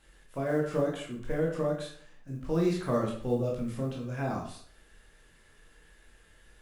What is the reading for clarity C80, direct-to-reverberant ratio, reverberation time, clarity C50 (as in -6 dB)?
9.5 dB, -2.5 dB, 0.55 s, 5.0 dB